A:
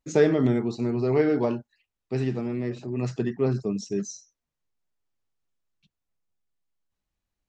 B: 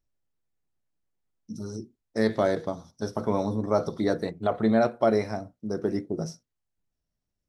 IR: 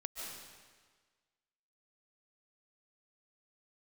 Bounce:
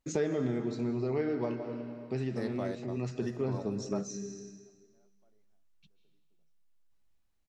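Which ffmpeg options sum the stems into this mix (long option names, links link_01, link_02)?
-filter_complex "[0:a]volume=-2dB,asplit=3[link_01][link_02][link_03];[link_02]volume=-4dB[link_04];[1:a]adelay=200,volume=-5.5dB[link_05];[link_03]apad=whole_len=338702[link_06];[link_05][link_06]sidechaingate=range=-47dB:threshold=-33dB:ratio=16:detection=peak[link_07];[2:a]atrim=start_sample=2205[link_08];[link_04][link_08]afir=irnorm=-1:irlink=0[link_09];[link_01][link_07][link_09]amix=inputs=3:normalize=0,acompressor=threshold=-37dB:ratio=2"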